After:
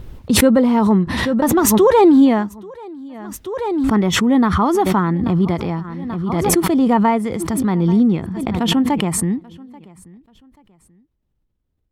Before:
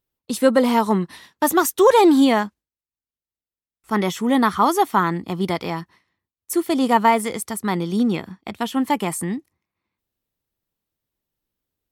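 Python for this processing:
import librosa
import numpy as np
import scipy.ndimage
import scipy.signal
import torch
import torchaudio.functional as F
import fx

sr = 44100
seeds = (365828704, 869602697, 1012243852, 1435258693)

p1 = fx.riaa(x, sr, side='playback')
p2 = p1 + fx.echo_feedback(p1, sr, ms=835, feedback_pct=30, wet_db=-23.5, dry=0)
p3 = fx.pre_swell(p2, sr, db_per_s=24.0)
y = F.gain(torch.from_numpy(p3), -2.0).numpy()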